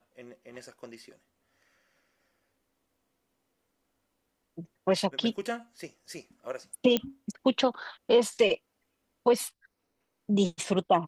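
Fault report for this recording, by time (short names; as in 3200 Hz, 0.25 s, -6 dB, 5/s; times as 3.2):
6.97 pop -12 dBFS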